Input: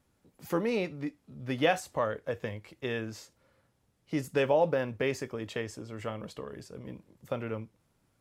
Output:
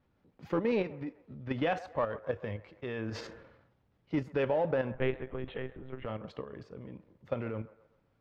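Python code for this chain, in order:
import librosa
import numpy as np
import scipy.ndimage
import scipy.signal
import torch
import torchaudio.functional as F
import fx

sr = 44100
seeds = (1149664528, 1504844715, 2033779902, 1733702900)

p1 = np.clip(x, -10.0 ** (-29.5 / 20.0), 10.0 ** (-29.5 / 20.0))
p2 = x + (p1 * 10.0 ** (-5.5 / 20.0))
p3 = fx.lpc_monotone(p2, sr, seeds[0], pitch_hz=130.0, order=10, at=(4.94, 6.06))
p4 = fx.level_steps(p3, sr, step_db=9)
p5 = fx.air_absorb(p4, sr, metres=250.0)
p6 = p5 + fx.echo_wet_bandpass(p5, sr, ms=131, feedback_pct=42, hz=910.0, wet_db=-15.5, dry=0)
y = fx.sustainer(p6, sr, db_per_s=54.0, at=(2.73, 4.2))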